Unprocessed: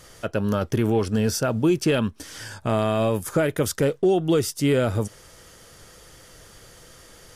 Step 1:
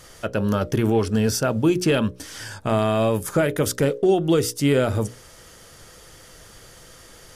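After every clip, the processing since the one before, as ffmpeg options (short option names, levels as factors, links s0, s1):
-af "bandreject=f=60:t=h:w=6,bandreject=f=120:t=h:w=6,bandreject=f=180:t=h:w=6,bandreject=f=240:t=h:w=6,bandreject=f=300:t=h:w=6,bandreject=f=360:t=h:w=6,bandreject=f=420:t=h:w=6,bandreject=f=480:t=h:w=6,bandreject=f=540:t=h:w=6,bandreject=f=600:t=h:w=6,volume=1.26"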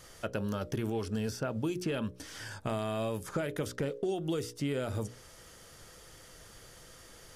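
-filter_complex "[0:a]acrossover=split=3300|7100[s0][s1][s2];[s0]acompressor=threshold=0.0631:ratio=4[s3];[s1]acompressor=threshold=0.00708:ratio=4[s4];[s2]acompressor=threshold=0.00398:ratio=4[s5];[s3][s4][s5]amix=inputs=3:normalize=0,volume=0.447"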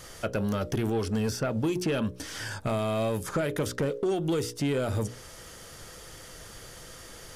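-af "asoftclip=type=tanh:threshold=0.0398,volume=2.37"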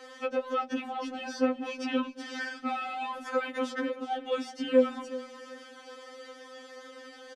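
-af "highpass=110,lowpass=3400,aecho=1:1:371|742|1113:0.178|0.048|0.013,afftfilt=real='re*3.46*eq(mod(b,12),0)':imag='im*3.46*eq(mod(b,12),0)':win_size=2048:overlap=0.75,volume=1.5"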